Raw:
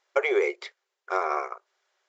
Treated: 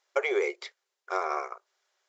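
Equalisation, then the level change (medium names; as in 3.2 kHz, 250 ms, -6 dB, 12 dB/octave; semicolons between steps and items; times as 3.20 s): tone controls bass -5 dB, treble +10 dB; treble shelf 6.5 kHz -9 dB; -3.0 dB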